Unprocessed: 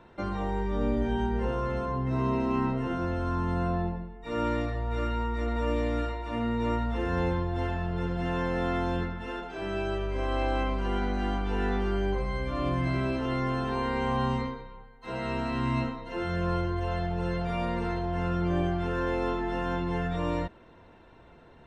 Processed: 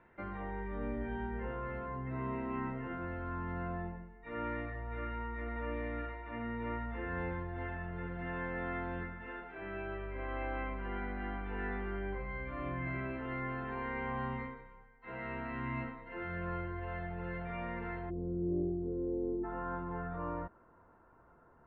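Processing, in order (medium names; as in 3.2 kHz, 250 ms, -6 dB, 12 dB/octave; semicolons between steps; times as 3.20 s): four-pole ladder low-pass 2.3 kHz, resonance 55%, from 18.09 s 440 Hz, from 19.43 s 1.5 kHz; trim -1 dB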